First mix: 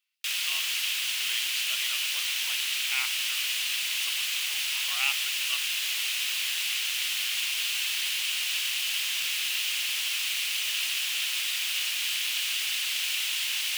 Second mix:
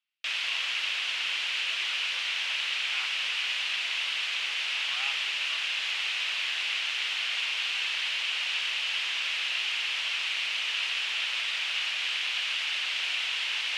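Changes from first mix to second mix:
background +9.0 dB; master: add tape spacing loss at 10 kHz 30 dB

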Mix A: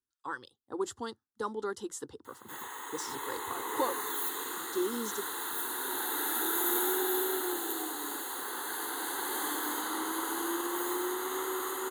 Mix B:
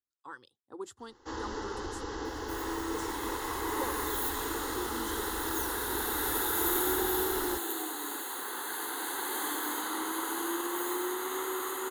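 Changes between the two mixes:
speech -7.5 dB; first sound: unmuted; master: add bell 2400 Hz +5.5 dB 0.27 oct

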